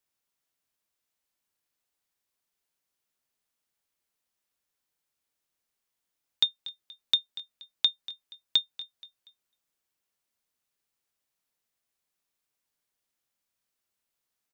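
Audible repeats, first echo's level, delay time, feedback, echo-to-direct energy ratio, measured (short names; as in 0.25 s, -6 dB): 3, -17.0 dB, 0.238 s, 36%, -16.5 dB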